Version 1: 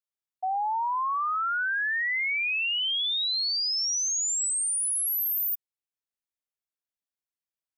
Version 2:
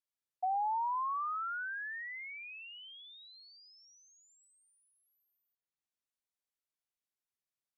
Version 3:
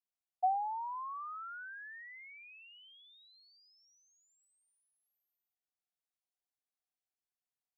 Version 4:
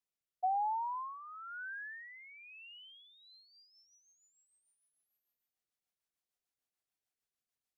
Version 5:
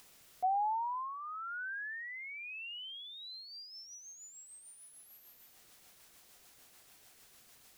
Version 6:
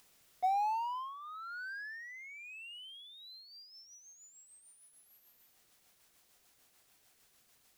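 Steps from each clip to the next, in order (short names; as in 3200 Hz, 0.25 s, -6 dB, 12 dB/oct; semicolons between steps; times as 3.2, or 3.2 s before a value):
treble ducked by the level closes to 960 Hz, closed at -28.5 dBFS; gain -3 dB
bell 740 Hz +12.5 dB 0.22 oct; gain -7.5 dB
rotary speaker horn 1 Hz, later 6.7 Hz, at 2.96; gain +4 dB
upward compressor, threshold -38 dBFS; gain +1 dB
G.711 law mismatch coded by A; gain +2 dB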